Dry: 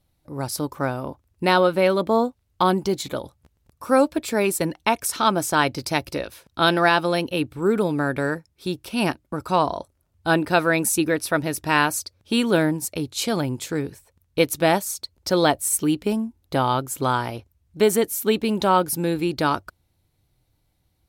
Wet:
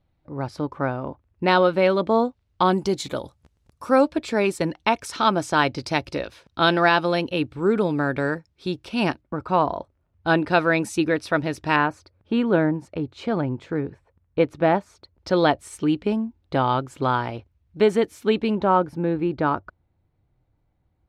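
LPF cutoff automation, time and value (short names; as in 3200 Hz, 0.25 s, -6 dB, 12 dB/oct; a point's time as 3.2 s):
2500 Hz
from 1.48 s 4500 Hz
from 2.72 s 8500 Hz
from 3.89 s 5000 Hz
from 9.21 s 2400 Hz
from 10.27 s 4200 Hz
from 11.76 s 1700 Hz
from 15.19 s 3300 Hz
from 18.55 s 1600 Hz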